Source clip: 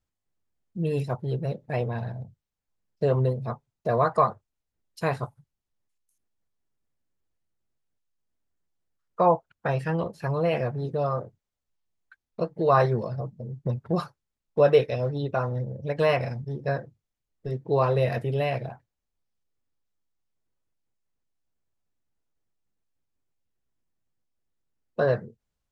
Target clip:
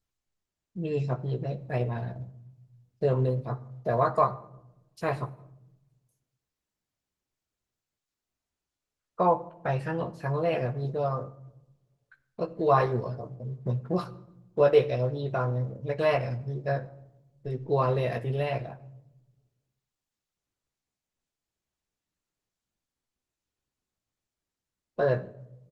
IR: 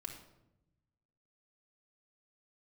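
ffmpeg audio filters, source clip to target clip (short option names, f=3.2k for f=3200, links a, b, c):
-filter_complex "[0:a]asplit=2[a][b];[b]adelay=16,volume=-6dB[c];[a][c]amix=inputs=2:normalize=0,asplit=2[d][e];[1:a]atrim=start_sample=2205[f];[e][f]afir=irnorm=-1:irlink=0,volume=-5.5dB[g];[d][g]amix=inputs=2:normalize=0,volume=-5dB" -ar 48000 -c:a libopus -b:a 16k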